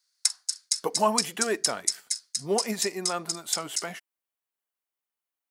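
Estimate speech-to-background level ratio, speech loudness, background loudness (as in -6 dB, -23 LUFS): -2.0 dB, -31.0 LUFS, -29.0 LUFS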